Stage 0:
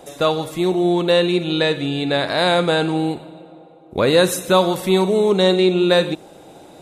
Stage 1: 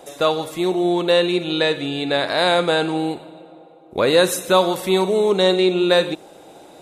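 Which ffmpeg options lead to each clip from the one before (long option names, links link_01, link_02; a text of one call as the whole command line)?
ffmpeg -i in.wav -af "bass=frequency=250:gain=-7,treble=frequency=4000:gain=0" out.wav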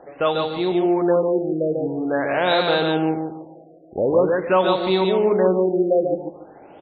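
ffmpeg -i in.wav -af "aecho=1:1:145|290|435|580:0.631|0.17|0.046|0.0124,afftfilt=real='re*lt(b*sr/1024,740*pow(4600/740,0.5+0.5*sin(2*PI*0.46*pts/sr)))':imag='im*lt(b*sr/1024,740*pow(4600/740,0.5+0.5*sin(2*PI*0.46*pts/sr)))':win_size=1024:overlap=0.75,volume=-2dB" out.wav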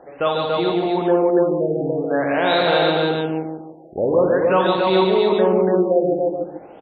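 ffmpeg -i in.wav -af "aecho=1:1:58.31|285.7:0.447|0.708" out.wav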